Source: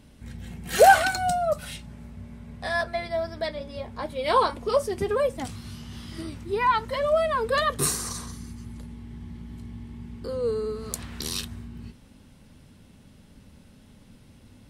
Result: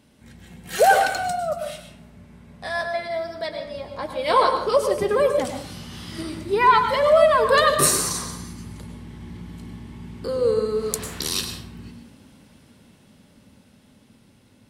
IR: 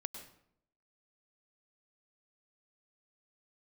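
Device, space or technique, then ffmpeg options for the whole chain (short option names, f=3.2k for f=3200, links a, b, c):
far laptop microphone: -filter_complex "[1:a]atrim=start_sample=2205[a];[0:a][a]afir=irnorm=-1:irlink=0,highpass=f=190:p=1,dynaudnorm=f=800:g=9:m=8.5dB,asettb=1/sr,asplit=3[b][c][d];[b]atrim=end=2.904[e];[c]atrim=start=2.9:end=3.66,asetpts=PTS-STARTPTS,afade=t=in:d=0.004:c=qsin,afade=t=out:st=0.756:d=0.004:c=qsin,highpass=f=120:p=1[f];[d]atrim=start=3.656[g];[e][f]acrossfade=d=0.004:c1=hsin:c2=qsin[h];[h][g]acrossfade=d=0.004:c1=qsin:c2=hsin,volume=1.5dB"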